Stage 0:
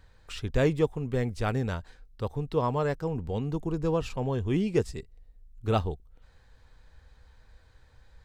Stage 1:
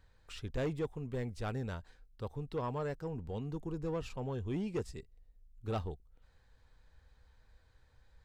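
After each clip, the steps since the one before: soft clip -20.5 dBFS, distortion -15 dB; gain -8 dB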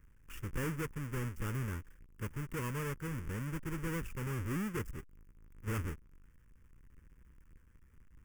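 half-waves squared off; fixed phaser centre 1700 Hz, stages 4; gain -1.5 dB

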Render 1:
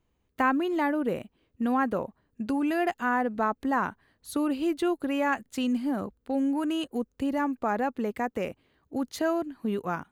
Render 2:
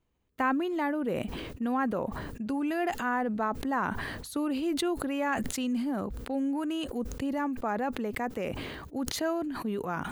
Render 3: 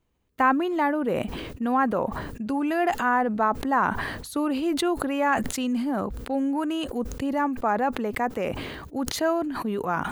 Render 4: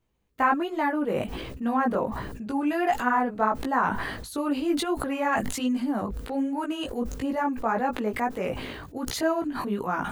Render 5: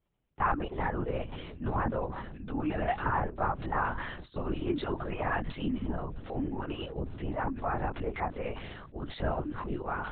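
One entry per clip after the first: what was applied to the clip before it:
sustainer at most 30 dB/s; gain -3.5 dB
dynamic EQ 950 Hz, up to +5 dB, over -40 dBFS, Q 0.79; gain +3.5 dB
chorus voices 2, 1.3 Hz, delay 18 ms, depth 3 ms; gain +1.5 dB
LPC vocoder at 8 kHz whisper; gain -6 dB

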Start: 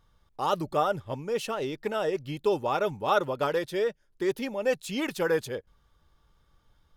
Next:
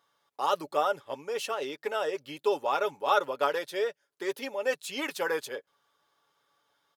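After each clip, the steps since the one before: HPF 460 Hz 12 dB/oct; comb 7.1 ms, depth 40%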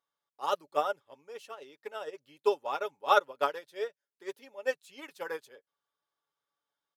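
upward expander 2.5:1, over -34 dBFS; gain +2.5 dB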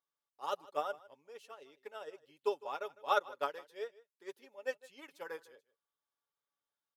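echo 0.155 s -20.5 dB; gain -7 dB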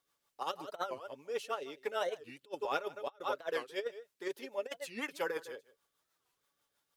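rotary speaker horn 6.3 Hz; negative-ratio compressor -46 dBFS, ratio -0.5; record warp 45 rpm, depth 250 cents; gain +9.5 dB

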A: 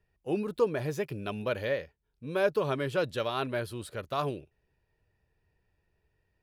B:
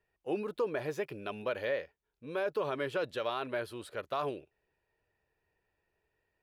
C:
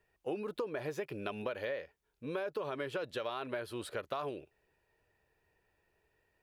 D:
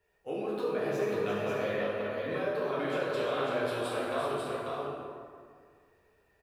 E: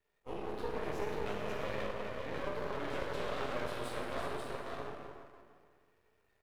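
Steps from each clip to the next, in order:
tone controls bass -12 dB, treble -7 dB; limiter -23 dBFS, peak gain reduction 9 dB
compressor, threshold -39 dBFS, peak gain reduction 11.5 dB; gain +4.5 dB
on a send: tapped delay 0.342/0.542 s -8.5/-4 dB; on the sum: plate-style reverb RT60 2 s, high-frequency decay 0.55×, DRR -7.5 dB; gain -3 dB
half-wave rectifier; gain -2.5 dB

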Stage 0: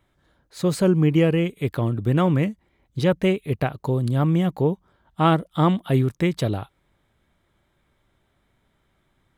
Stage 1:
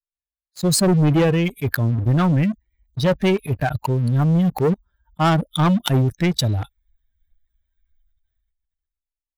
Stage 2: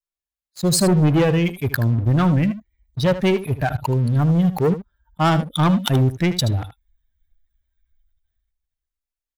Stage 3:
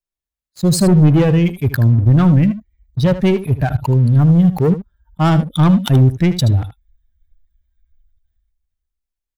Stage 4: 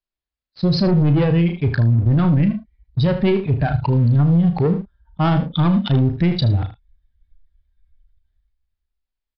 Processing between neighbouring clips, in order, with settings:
per-bin expansion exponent 2; sample leveller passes 3; sustainer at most 27 dB/s; gain -2 dB
echo 77 ms -13 dB
low shelf 300 Hz +9.5 dB; gain -1 dB
doubler 35 ms -9 dB; downsampling 11025 Hz; limiter -10 dBFS, peak gain reduction 7 dB

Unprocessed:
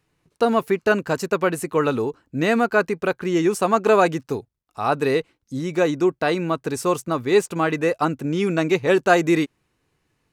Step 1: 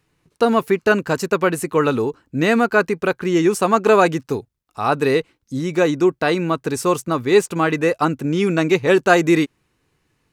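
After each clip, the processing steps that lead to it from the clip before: bell 660 Hz -2.5 dB 0.63 oct; gain +3.5 dB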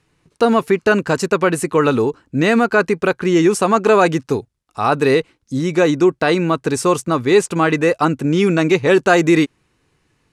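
LPF 11000 Hz 24 dB/oct; in parallel at +2.5 dB: limiter -10.5 dBFS, peak gain reduction 9 dB; on the sum: gain -3.5 dB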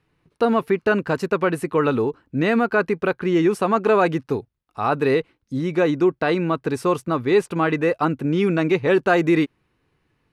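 bell 7300 Hz -13.5 dB 1.1 oct; gain -4.5 dB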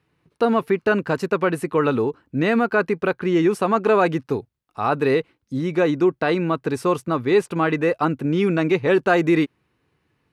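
HPF 60 Hz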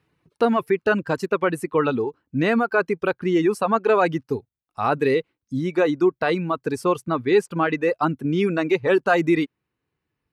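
reverb removal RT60 1.8 s

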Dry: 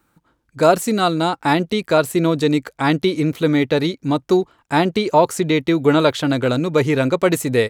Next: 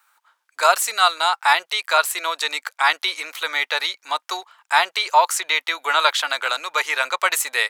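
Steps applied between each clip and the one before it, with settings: HPF 910 Hz 24 dB/oct; gain +5.5 dB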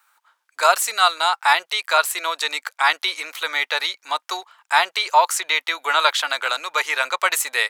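nothing audible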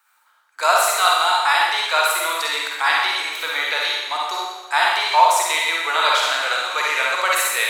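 reverb RT60 1.2 s, pre-delay 42 ms, DRR -3.5 dB; gain -3 dB

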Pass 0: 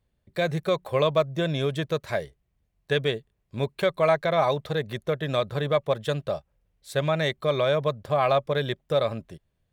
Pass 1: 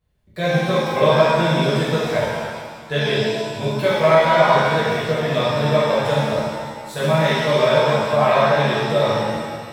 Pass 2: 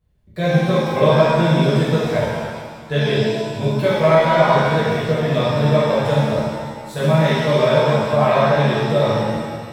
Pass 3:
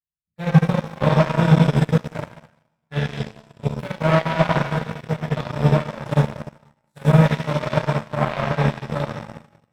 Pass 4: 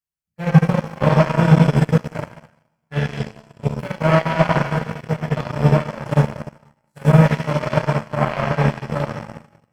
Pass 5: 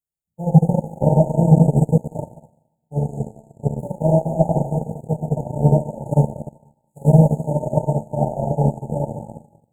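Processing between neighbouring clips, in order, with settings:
shimmer reverb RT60 1.7 s, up +7 st, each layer -8 dB, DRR -10 dB; gain -3 dB
low shelf 420 Hz +7.5 dB; gain -2 dB
fifteen-band EQ 160 Hz +8 dB, 400 Hz -10 dB, 4000 Hz -6 dB; added harmonics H 7 -17 dB, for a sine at 1 dBFS; gain -3.5 dB
notch 3700 Hz, Q 5.2; gain +2 dB
brick-wall FIR band-stop 930–6500 Hz

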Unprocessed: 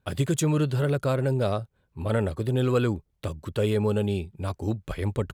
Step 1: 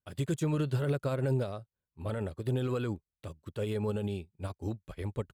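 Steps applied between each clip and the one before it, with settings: limiter -21 dBFS, peak gain reduction 8.5 dB; upward expander 2.5:1, over -41 dBFS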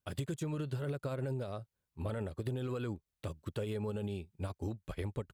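compressor 10:1, threshold -38 dBFS, peak gain reduction 13 dB; gain +4 dB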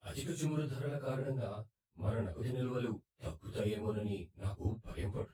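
phase scrambler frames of 0.1 s; three-band expander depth 70%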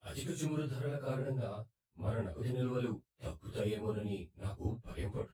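doubler 16 ms -10.5 dB

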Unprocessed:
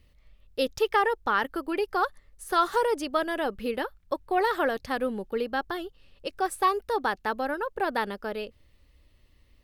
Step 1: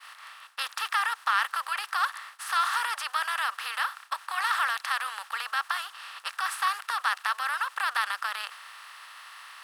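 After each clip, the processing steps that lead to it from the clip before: per-bin compression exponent 0.4; inverse Chebyshev high-pass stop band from 330 Hz, stop band 60 dB; expander -37 dBFS; gain -2.5 dB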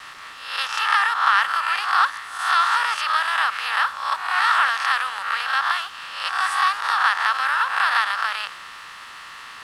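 spectral swells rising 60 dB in 0.70 s; bit-crush 8-bit; air absorption 59 m; gain +6 dB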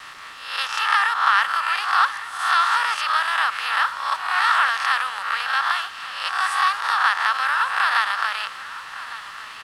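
echo 1.157 s -15.5 dB

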